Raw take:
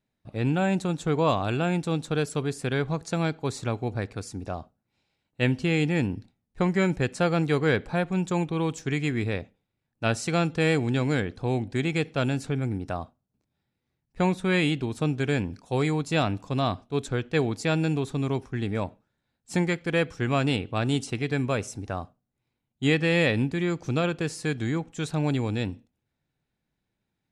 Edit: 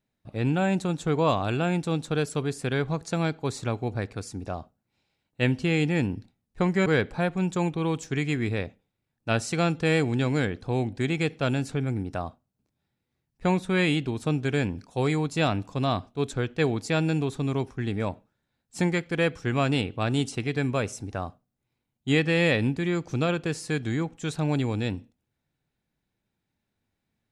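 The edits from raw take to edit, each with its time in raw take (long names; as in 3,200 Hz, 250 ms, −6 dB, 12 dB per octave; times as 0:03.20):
0:06.86–0:07.61: remove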